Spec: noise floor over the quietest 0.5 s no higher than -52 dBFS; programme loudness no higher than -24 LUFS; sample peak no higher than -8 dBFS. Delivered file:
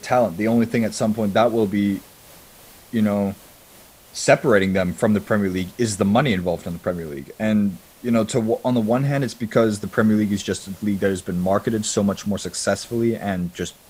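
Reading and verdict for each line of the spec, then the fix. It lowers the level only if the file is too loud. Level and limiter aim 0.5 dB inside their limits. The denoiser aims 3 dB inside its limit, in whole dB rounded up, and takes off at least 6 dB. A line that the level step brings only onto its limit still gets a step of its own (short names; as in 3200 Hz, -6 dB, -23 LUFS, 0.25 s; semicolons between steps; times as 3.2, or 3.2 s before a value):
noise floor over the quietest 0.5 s -48 dBFS: fail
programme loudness -21.0 LUFS: fail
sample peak -1.5 dBFS: fail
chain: denoiser 6 dB, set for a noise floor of -48 dBFS; gain -3.5 dB; limiter -8.5 dBFS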